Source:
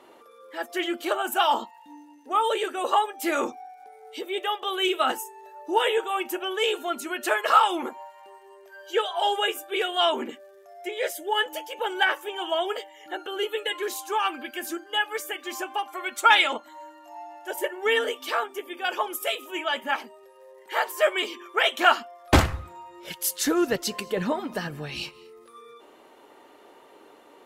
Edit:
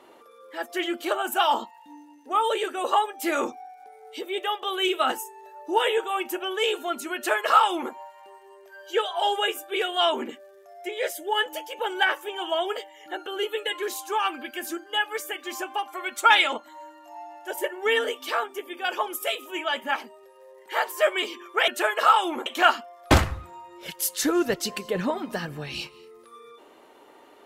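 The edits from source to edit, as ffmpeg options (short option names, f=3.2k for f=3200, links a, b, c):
-filter_complex "[0:a]asplit=3[a][b][c];[a]atrim=end=21.682[d];[b]atrim=start=7.148:end=7.932[e];[c]atrim=start=21.678[f];[d][e]acrossfade=d=0.004:c1=hsin:c2=hsin[g];[g][f]acrossfade=d=0.004:c1=hsin:c2=hsin"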